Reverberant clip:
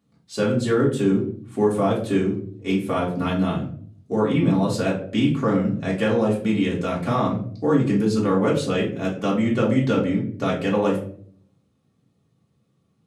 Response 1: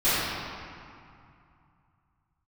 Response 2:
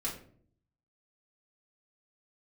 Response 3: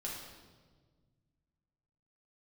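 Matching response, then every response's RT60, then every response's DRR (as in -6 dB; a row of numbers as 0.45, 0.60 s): 2; 2.5, 0.55, 1.5 s; -18.5, -5.5, -4.5 dB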